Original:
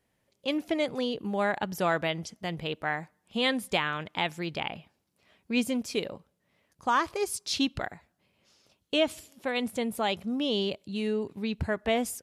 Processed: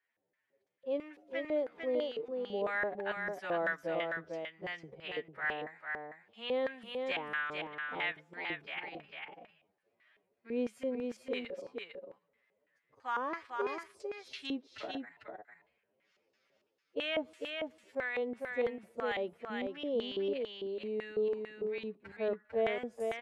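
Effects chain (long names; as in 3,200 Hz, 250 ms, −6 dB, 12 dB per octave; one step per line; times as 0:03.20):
phase-vocoder stretch with locked phases 1.9×
auto-filter band-pass square 3 Hz 460–1,800 Hz
single-tap delay 449 ms −4.5 dB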